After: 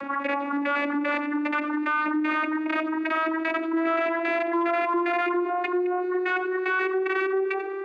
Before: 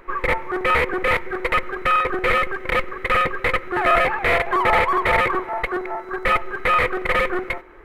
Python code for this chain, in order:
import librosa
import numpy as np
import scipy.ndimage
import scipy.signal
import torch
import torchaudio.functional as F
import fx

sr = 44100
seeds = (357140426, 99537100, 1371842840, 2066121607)

y = fx.vocoder_glide(x, sr, note=61, semitones=6)
y = fx.notch(y, sr, hz=610.0, q=12.0)
y = y + 10.0 ** (-21.0 / 20.0) * np.pad(y, (int(89 * sr / 1000.0), 0))[:len(y)]
y = fx.env_flatten(y, sr, amount_pct=70)
y = y * librosa.db_to_amplitude(-8.5)